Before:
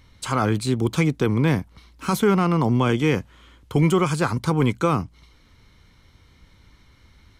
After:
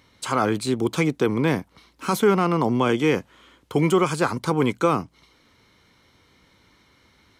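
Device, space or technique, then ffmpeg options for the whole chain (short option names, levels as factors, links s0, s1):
filter by subtraction: -filter_complex "[0:a]asplit=2[s0][s1];[s1]lowpass=400,volume=-1[s2];[s0][s2]amix=inputs=2:normalize=0"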